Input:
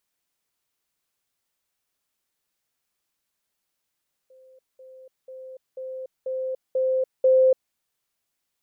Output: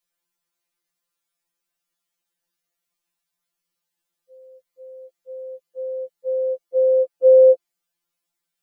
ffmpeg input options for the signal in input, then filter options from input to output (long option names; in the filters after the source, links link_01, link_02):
-f lavfi -i "aevalsrc='pow(10,(-49.5+6*floor(t/0.49))/20)*sin(2*PI*520*t)*clip(min(mod(t,0.49),0.29-mod(t,0.49))/0.005,0,1)':duration=3.43:sample_rate=44100"
-af "afftfilt=real='re*2.83*eq(mod(b,8),0)':imag='im*2.83*eq(mod(b,8),0)':win_size=2048:overlap=0.75"